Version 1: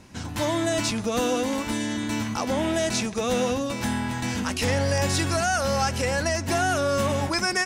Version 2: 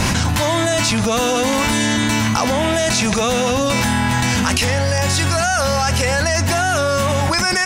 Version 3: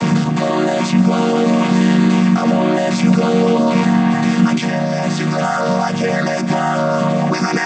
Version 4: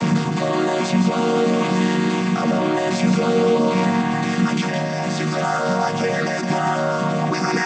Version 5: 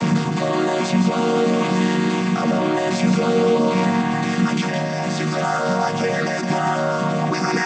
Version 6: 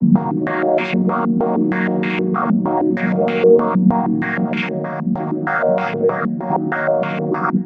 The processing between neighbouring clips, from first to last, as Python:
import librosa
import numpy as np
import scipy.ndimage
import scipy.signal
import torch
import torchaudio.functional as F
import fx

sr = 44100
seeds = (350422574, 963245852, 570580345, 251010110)

y1 = fx.peak_eq(x, sr, hz=330.0, db=-7.5, octaves=1.3)
y1 = fx.env_flatten(y1, sr, amount_pct=100)
y1 = F.gain(torch.from_numpy(y1), 5.5).numpy()
y2 = fx.chord_vocoder(y1, sr, chord='minor triad', root=51)
y2 = F.gain(torch.from_numpy(y2), 4.0).numpy()
y3 = y2 + 10.0 ** (-6.0 / 20.0) * np.pad(y2, (int(165 * sr / 1000.0), 0))[:len(y2)]
y3 = F.gain(torch.from_numpy(y3), -3.5).numpy()
y4 = y3
y5 = y4 + 10.0 ** (-10.0 / 20.0) * np.pad(y4, (int(113 * sr / 1000.0), 0))[:len(y4)]
y5 = fx.filter_held_lowpass(y5, sr, hz=6.4, low_hz=220.0, high_hz=2500.0)
y5 = F.gain(torch.from_numpy(y5), -2.0).numpy()